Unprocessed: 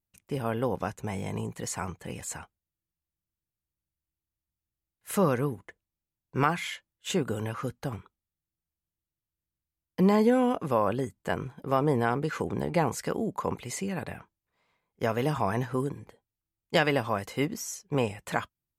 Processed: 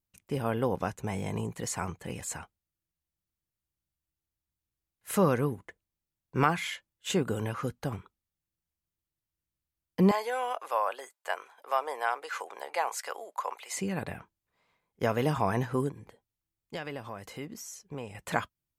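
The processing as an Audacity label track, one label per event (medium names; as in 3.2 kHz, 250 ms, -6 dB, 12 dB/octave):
10.110000	13.770000	high-pass 640 Hz 24 dB/octave
15.900000	18.150000	compression 2:1, threshold -45 dBFS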